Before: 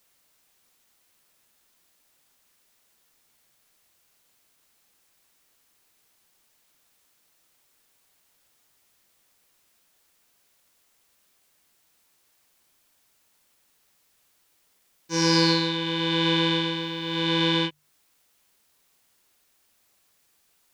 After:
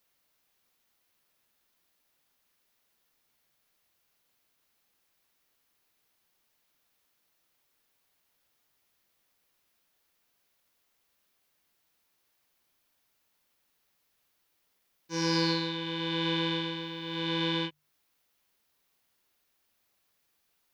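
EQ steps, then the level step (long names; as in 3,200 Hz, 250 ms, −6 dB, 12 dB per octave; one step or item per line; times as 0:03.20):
parametric band 8,100 Hz −6.5 dB 0.74 octaves
−7.0 dB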